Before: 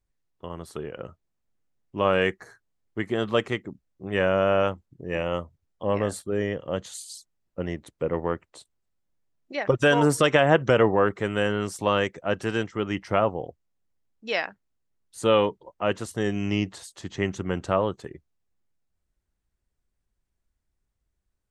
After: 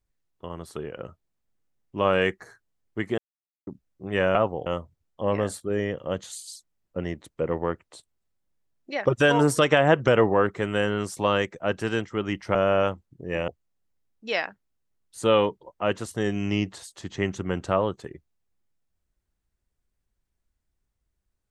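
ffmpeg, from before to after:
-filter_complex "[0:a]asplit=7[s0][s1][s2][s3][s4][s5][s6];[s0]atrim=end=3.18,asetpts=PTS-STARTPTS,afade=t=out:st=3.176:d=0.004:c=hsin[s7];[s1]atrim=start=3.18:end=3.67,asetpts=PTS-STARTPTS,volume=0[s8];[s2]atrim=start=3.67:end=4.352,asetpts=PTS-STARTPTS,afade=t=in:d=0.004:c=hsin[s9];[s3]atrim=start=13.168:end=13.482[s10];[s4]atrim=start=5.278:end=13.172[s11];[s5]atrim=start=4.348:end=5.282[s12];[s6]atrim=start=13.478[s13];[s7][s8][s9]concat=n=3:v=0:a=1[s14];[s14][s10]acrossfade=d=0.004:c1=hsin:c2=hsin[s15];[s15][s11]acrossfade=d=0.004:c1=hsin:c2=hsin[s16];[s16][s12]acrossfade=d=0.004:c1=hsin:c2=hsin[s17];[s17][s13]acrossfade=d=0.004:c1=hsin:c2=hsin"

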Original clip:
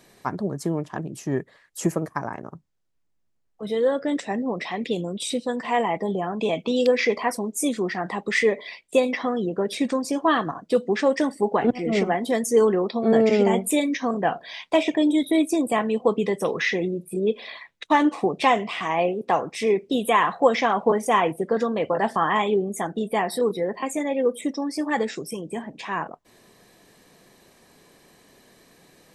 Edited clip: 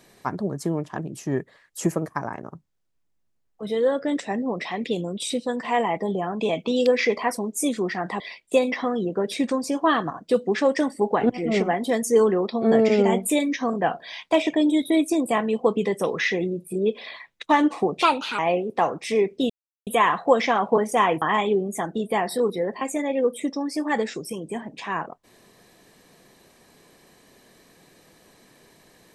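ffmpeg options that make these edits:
-filter_complex "[0:a]asplit=6[s0][s1][s2][s3][s4][s5];[s0]atrim=end=8.202[s6];[s1]atrim=start=8.608:end=18.434[s7];[s2]atrim=start=18.43:end=18.9,asetpts=PTS-STARTPTS,asetrate=56448,aresample=44100[s8];[s3]atrim=start=18.896:end=20.01,asetpts=PTS-STARTPTS,afade=t=out:st=1.11:d=0.004:c=hsin,apad=pad_dur=0.37[s9];[s4]atrim=start=20.01:end=21.362,asetpts=PTS-STARTPTS,afade=t=in:d=0.004:c=hsin[s10];[s5]atrim=start=22.228[s11];[s6][s7]acrossfade=d=0.004:c1=hsin:c2=hsin[s12];[s12][s8]acrossfade=d=0.004:c1=hsin:c2=hsin[s13];[s9][s10]concat=n=2:v=0:a=1[s14];[s13][s14]acrossfade=d=0.004:c1=hsin:c2=hsin[s15];[s15][s11]acrossfade=d=0.004:c1=hsin:c2=hsin"

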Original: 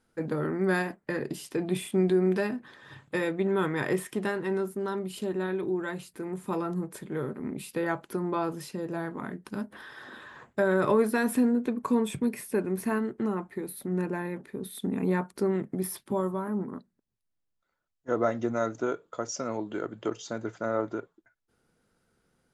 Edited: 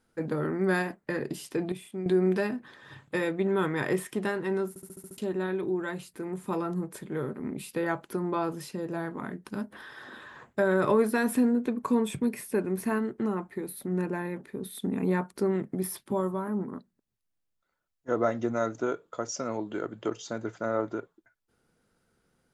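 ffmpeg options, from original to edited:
-filter_complex "[0:a]asplit=10[s0][s1][s2][s3][s4][s5][s6][s7][s8][s9];[s0]atrim=end=1.722[s10];[s1]atrim=start=1.718:end=2.062,asetpts=PTS-STARTPTS,volume=0.299[s11];[s2]atrim=start=2.058:end=4.762[s12];[s3]atrim=start=4.688:end=4.762[s13];[s4]atrim=start=4.688:end=4.762[s14];[s5]atrim=start=4.688:end=4.762[s15];[s6]atrim=start=4.688:end=4.762[s16];[s7]atrim=start=4.688:end=4.762[s17];[s8]atrim=start=4.688:end=4.762[s18];[s9]atrim=start=5.178[s19];[s10][s11]acrossfade=d=0.004:c1=hsin:c2=hsin[s20];[s20][s12]acrossfade=d=0.004:c1=hsin:c2=hsin[s21];[s21][s13]acrossfade=d=0.004:c1=hsin:c2=hsin[s22];[s22][s14]acrossfade=d=0.004:c1=hsin:c2=hsin[s23];[s23][s15]acrossfade=d=0.004:c1=hsin:c2=hsin[s24];[s24][s16]acrossfade=d=0.004:c1=hsin:c2=hsin[s25];[s25][s17]acrossfade=d=0.004:c1=hsin:c2=hsin[s26];[s26][s18]acrossfade=d=0.004:c1=hsin:c2=hsin[s27];[s27][s19]acrossfade=d=0.004:c1=hsin:c2=hsin"

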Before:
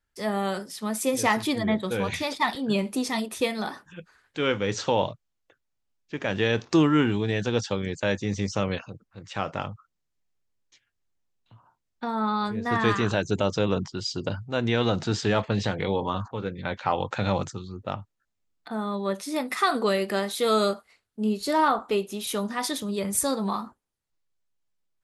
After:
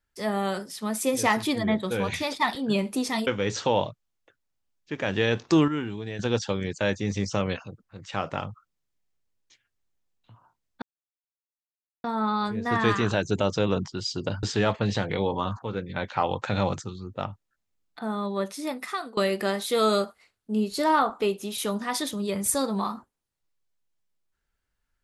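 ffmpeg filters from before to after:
-filter_complex "[0:a]asplit=7[s0][s1][s2][s3][s4][s5][s6];[s0]atrim=end=3.272[s7];[s1]atrim=start=4.488:end=6.902[s8];[s2]atrim=start=6.898:end=7.412,asetpts=PTS-STARTPTS,volume=0.376[s9];[s3]atrim=start=7.408:end=12.04,asetpts=PTS-STARTPTS,afade=t=out:st=4.628:d=0.004:c=hsin,apad=pad_dur=1.22[s10];[s4]atrim=start=12.04:end=14.432,asetpts=PTS-STARTPTS,afade=t=in:d=0.004:c=hsin[s11];[s5]atrim=start=15.118:end=19.86,asetpts=PTS-STARTPTS,afade=t=out:st=3.722:d=1.02:c=qsin:silence=0.0794328[s12];[s6]atrim=start=19.86,asetpts=PTS-STARTPTS,afade=t=in:d=0.004:c=hsin:silence=0.0794328[s13];[s7][s8]acrossfade=d=0.004:c1=hsin:c2=hsin[s14];[s14][s9]acrossfade=d=0.004:c1=hsin:c2=hsin[s15];[s10][s11]concat=n=2:v=0:a=1[s16];[s15][s16]acrossfade=d=0.004:c1=hsin:c2=hsin[s17];[s12][s13]concat=n=2:v=0:a=1[s18];[s17][s18]acrossfade=d=0.004:c1=hsin:c2=hsin"

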